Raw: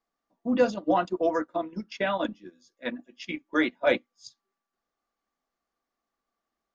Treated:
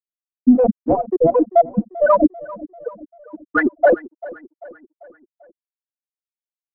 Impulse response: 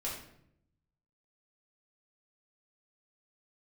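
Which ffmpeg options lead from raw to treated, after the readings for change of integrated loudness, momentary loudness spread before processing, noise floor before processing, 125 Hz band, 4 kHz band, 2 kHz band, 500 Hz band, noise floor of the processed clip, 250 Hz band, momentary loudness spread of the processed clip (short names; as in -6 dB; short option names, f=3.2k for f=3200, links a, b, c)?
+11.0 dB, 13 LU, under -85 dBFS, +11.5 dB, under -15 dB, +6.5 dB, +11.0 dB, under -85 dBFS, +11.5 dB, 19 LU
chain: -filter_complex "[0:a]bandreject=f=1.1k:w=13,afftfilt=real='re*gte(hypot(re,im),0.316)':imag='im*gte(hypot(re,im),0.316)':win_size=1024:overlap=0.75,apsyclip=28.5dB,acrossover=split=260|680[a][b][c];[c]dynaudnorm=f=100:g=13:m=5dB[d];[a][b][d]amix=inputs=3:normalize=0,aeval=exprs='1.78*(cos(1*acos(clip(val(0)/1.78,-1,1)))-cos(1*PI/2))+0.0631*(cos(2*acos(clip(val(0)/1.78,-1,1)))-cos(2*PI/2))+0.0112*(cos(7*acos(clip(val(0)/1.78,-1,1)))-cos(7*PI/2))':c=same,highshelf=f=3.6k:g=-9.5,acrossover=split=510[e][f];[e]aeval=exprs='val(0)*(1-1/2+1/2*cos(2*PI*4*n/s))':c=same[g];[f]aeval=exprs='val(0)*(1-1/2-1/2*cos(2*PI*4*n/s))':c=same[h];[g][h]amix=inputs=2:normalize=0,asplit=2[i][j];[j]adelay=392,lowpass=f=4.3k:p=1,volume=-19dB,asplit=2[k][l];[l]adelay=392,lowpass=f=4.3k:p=1,volume=0.51,asplit=2[m][n];[n]adelay=392,lowpass=f=4.3k:p=1,volume=0.51,asplit=2[o][p];[p]adelay=392,lowpass=f=4.3k:p=1,volume=0.51[q];[i][k][m][o][q]amix=inputs=5:normalize=0,volume=-3dB"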